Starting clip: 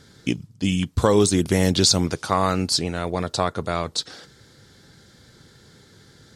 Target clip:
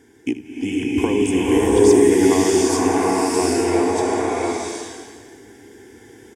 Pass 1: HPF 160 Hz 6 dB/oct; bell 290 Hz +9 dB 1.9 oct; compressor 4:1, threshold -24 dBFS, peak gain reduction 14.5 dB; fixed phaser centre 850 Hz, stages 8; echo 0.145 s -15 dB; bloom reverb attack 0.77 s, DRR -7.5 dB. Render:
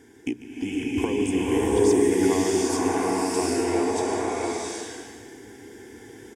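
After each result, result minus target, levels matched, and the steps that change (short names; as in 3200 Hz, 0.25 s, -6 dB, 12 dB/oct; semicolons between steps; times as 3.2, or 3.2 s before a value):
echo 67 ms late; compressor: peak gain reduction +6.5 dB
change: echo 78 ms -15 dB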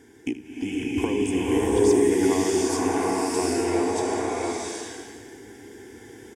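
compressor: peak gain reduction +6.5 dB
change: compressor 4:1, threshold -15.5 dBFS, peak gain reduction 8 dB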